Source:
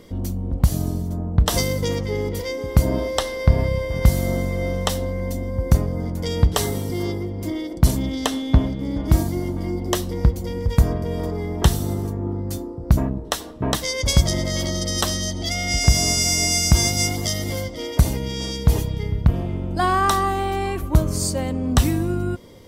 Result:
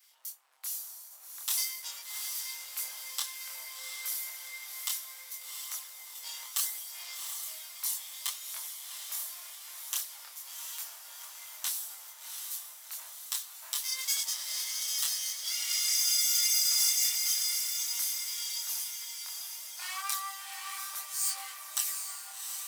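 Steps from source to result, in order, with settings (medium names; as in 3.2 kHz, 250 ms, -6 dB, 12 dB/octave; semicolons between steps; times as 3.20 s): comb filter that takes the minimum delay 7.7 ms; high-pass 850 Hz 24 dB/octave; differentiator; on a send: echo that smears into a reverb 737 ms, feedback 56%, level -5 dB; on the sum: chorus voices 2, 0.35 Hz, delay 25 ms, depth 3.2 ms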